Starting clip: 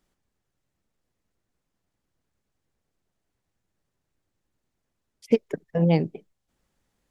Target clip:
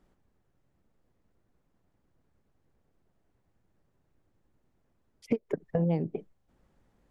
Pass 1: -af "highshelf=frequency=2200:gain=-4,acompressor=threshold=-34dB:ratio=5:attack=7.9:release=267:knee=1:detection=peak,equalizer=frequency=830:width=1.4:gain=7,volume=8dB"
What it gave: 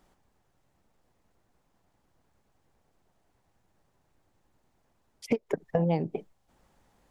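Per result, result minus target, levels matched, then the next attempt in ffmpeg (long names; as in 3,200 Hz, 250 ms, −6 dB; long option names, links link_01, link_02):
4,000 Hz band +7.5 dB; 1,000 Hz band +6.5 dB
-af "highshelf=frequency=2200:gain=-15.5,acompressor=threshold=-34dB:ratio=5:attack=7.9:release=267:knee=1:detection=peak,equalizer=frequency=830:width=1.4:gain=7,volume=8dB"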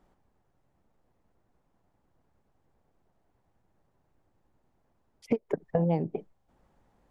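1,000 Hz band +5.5 dB
-af "highshelf=frequency=2200:gain=-15.5,acompressor=threshold=-34dB:ratio=5:attack=7.9:release=267:knee=1:detection=peak,volume=8dB"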